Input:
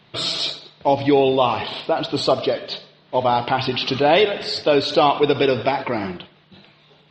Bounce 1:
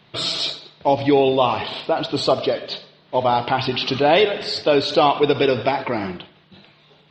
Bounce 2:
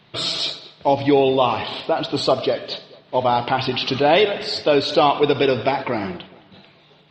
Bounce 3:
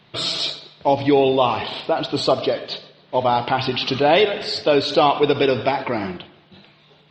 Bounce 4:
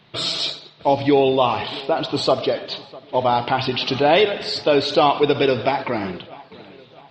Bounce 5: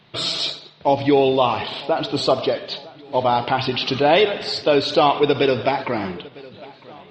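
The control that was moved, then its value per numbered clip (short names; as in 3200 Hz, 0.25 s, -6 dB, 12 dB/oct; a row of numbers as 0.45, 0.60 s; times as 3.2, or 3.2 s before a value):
dark delay, time: 77, 216, 139, 651, 954 ms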